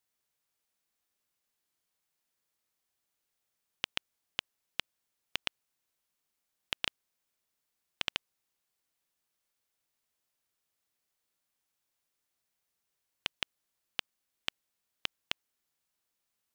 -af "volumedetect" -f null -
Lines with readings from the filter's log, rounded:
mean_volume: -47.6 dB
max_volume: -9.9 dB